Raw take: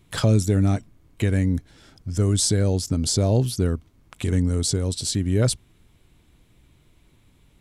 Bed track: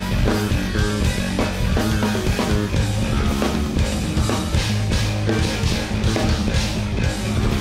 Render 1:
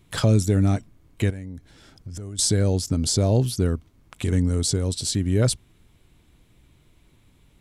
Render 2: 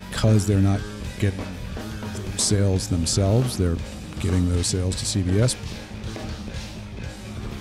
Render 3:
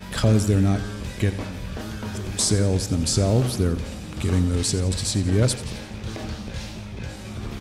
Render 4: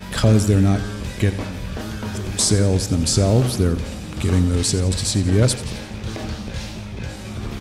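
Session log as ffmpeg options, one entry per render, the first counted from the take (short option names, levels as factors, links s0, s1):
-filter_complex "[0:a]asettb=1/sr,asplit=3[s0][s1][s2];[s0]atrim=end=1.304[s3];[s1]atrim=start=1.3:end=2.39,asetpts=PTS-STARTPTS,afade=t=in:d=0.004:c=qsin,afade=t=out:st=1.086:d=0.004:c=qsin,acompressor=threshold=0.0282:ratio=16:attack=3.2:release=140:knee=1:detection=peak[s4];[s2]atrim=start=2.386[s5];[s3][s4]acrossfade=d=0.004:c1=hsin:c2=qsin[s6];[s6][s5]acrossfade=d=0.004:c1=qsin:c2=hsin"
-filter_complex "[1:a]volume=0.224[s0];[0:a][s0]amix=inputs=2:normalize=0"
-af "aecho=1:1:87|174|261|348|435:0.188|0.0961|0.049|0.025|0.0127"
-af "volume=1.5"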